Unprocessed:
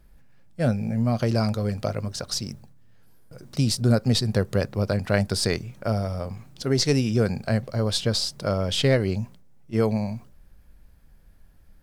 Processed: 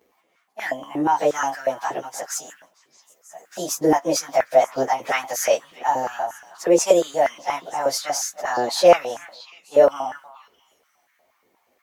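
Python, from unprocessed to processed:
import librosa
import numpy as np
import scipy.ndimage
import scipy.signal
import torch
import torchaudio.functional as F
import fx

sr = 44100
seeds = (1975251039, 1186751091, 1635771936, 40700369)

y = fx.pitch_bins(x, sr, semitones=4.5)
y = fx.echo_stepped(y, sr, ms=312, hz=1300.0, octaves=1.4, feedback_pct=70, wet_db=-11.5)
y = fx.filter_held_highpass(y, sr, hz=8.4, low_hz=420.0, high_hz=1600.0)
y = F.gain(torch.from_numpy(y), 4.0).numpy()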